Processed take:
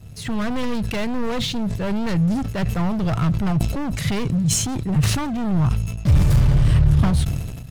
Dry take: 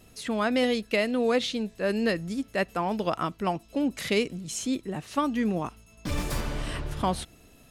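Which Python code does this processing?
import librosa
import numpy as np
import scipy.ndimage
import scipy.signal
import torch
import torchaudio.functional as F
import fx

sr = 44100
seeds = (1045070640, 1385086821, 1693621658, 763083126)

y = fx.diode_clip(x, sr, knee_db=-23.5)
y = fx.peak_eq(y, sr, hz=130.0, db=9.5, octaves=2.5)
y = fx.leveller(y, sr, passes=2)
y = np.clip(10.0 ** (19.5 / 20.0) * y, -1.0, 1.0) / 10.0 ** (19.5 / 20.0)
y = fx.low_shelf_res(y, sr, hz=180.0, db=11.0, q=1.5)
y = fx.sustainer(y, sr, db_per_s=40.0)
y = F.gain(torch.from_numpy(y), -3.0).numpy()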